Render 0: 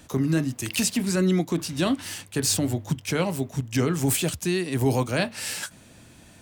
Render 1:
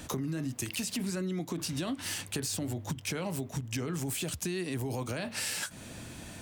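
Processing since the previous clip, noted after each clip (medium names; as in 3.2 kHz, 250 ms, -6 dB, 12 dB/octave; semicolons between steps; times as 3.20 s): peak limiter -21 dBFS, peak gain reduction 9.5 dB; compression 5:1, threshold -38 dBFS, peak gain reduction 12 dB; trim +5.5 dB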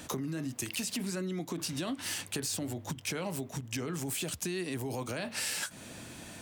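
bass shelf 100 Hz -10.5 dB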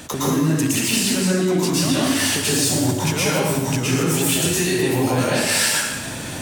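plate-style reverb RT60 1.2 s, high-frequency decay 0.8×, pre-delay 100 ms, DRR -8 dB; trim +8.5 dB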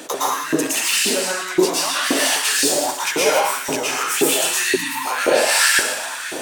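chunks repeated in reverse 110 ms, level -11 dB; spectral selection erased 4.75–5.06 s, 320–880 Hz; LFO high-pass saw up 1.9 Hz 350–1800 Hz; trim +1.5 dB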